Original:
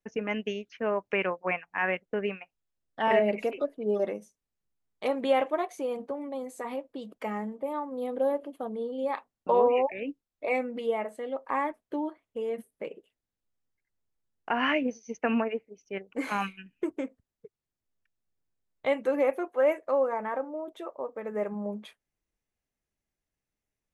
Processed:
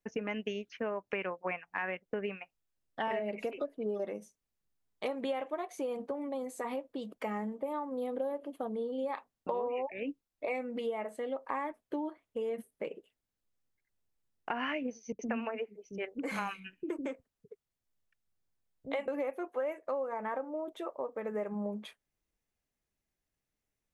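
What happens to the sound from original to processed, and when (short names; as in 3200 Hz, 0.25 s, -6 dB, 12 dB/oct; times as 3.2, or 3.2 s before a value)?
15.12–19.08 bands offset in time lows, highs 70 ms, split 300 Hz
whole clip: compressor 6:1, threshold -32 dBFS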